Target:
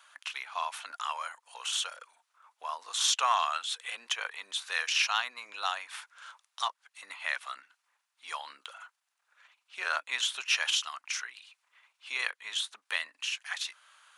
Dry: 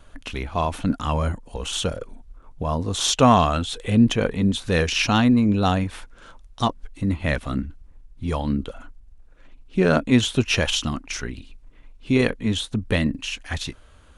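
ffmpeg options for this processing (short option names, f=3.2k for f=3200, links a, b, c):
-filter_complex "[0:a]highpass=f=1k:w=0.5412,highpass=f=1k:w=1.3066,asplit=2[a][b];[b]acompressor=threshold=-40dB:ratio=6,volume=-0.5dB[c];[a][c]amix=inputs=2:normalize=0,volume=-5.5dB"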